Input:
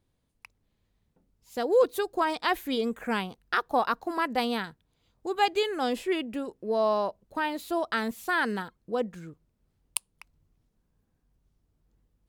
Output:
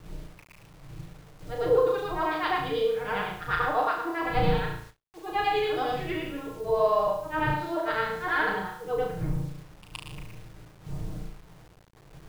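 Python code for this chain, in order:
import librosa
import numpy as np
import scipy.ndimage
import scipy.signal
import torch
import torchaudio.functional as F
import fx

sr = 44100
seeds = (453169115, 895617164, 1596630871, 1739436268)

p1 = fx.frame_reverse(x, sr, frame_ms=240.0)
p2 = fx.dmg_wind(p1, sr, seeds[0], corner_hz=160.0, level_db=-42.0)
p3 = scipy.signal.sosfilt(scipy.signal.butter(2, 3200.0, 'lowpass', fs=sr, output='sos'), p2)
p4 = fx.rider(p3, sr, range_db=3, speed_s=2.0)
p5 = p3 + (p4 * 10.0 ** (-1.5 / 20.0))
p6 = p5 + 0.73 * np.pad(p5, (int(6.5 * sr / 1000.0), 0))[:len(p5)]
p7 = p6 + fx.room_flutter(p6, sr, wall_m=6.1, rt60_s=0.55, dry=0)
p8 = fx.quant_dither(p7, sr, seeds[1], bits=8, dither='none')
p9 = fx.peak_eq(p8, sr, hz=240.0, db=-11.5, octaves=0.45)
p10 = fx.end_taper(p9, sr, db_per_s=360.0)
y = p10 * 10.0 ** (-4.5 / 20.0)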